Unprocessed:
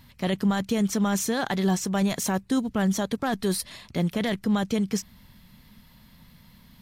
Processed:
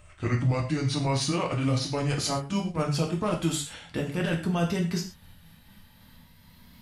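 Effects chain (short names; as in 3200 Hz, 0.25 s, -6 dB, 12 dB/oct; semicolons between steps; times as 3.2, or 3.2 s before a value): gliding pitch shift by -8 st ending unshifted; non-linear reverb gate 0.15 s falling, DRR 0.5 dB; gain -1.5 dB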